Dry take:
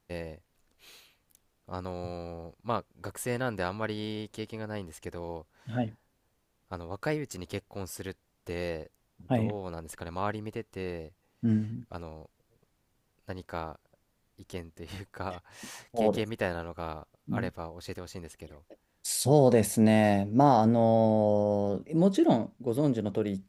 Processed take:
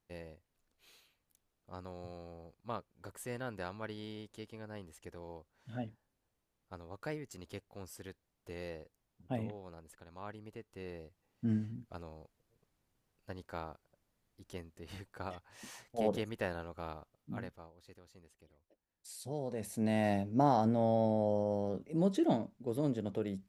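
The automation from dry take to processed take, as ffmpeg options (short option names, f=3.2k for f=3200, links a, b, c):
-af "volume=12dB,afade=t=out:st=9.35:d=0.72:silence=0.446684,afade=t=in:st=10.07:d=1.39:silence=0.298538,afade=t=out:st=16.9:d=0.9:silence=0.251189,afade=t=in:st=19.54:d=0.61:silence=0.266073"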